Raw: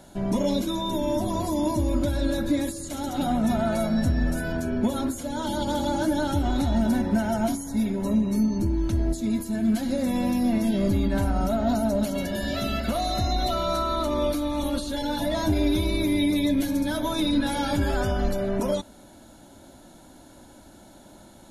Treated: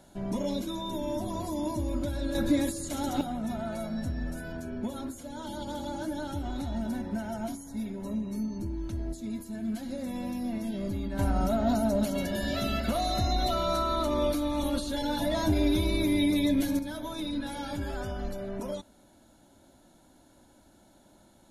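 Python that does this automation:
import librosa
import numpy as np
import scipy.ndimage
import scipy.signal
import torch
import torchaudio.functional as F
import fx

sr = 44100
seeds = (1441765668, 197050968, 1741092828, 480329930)

y = fx.gain(x, sr, db=fx.steps((0.0, -7.0), (2.35, -1.0), (3.21, -10.0), (11.19, -2.5), (16.79, -10.0)))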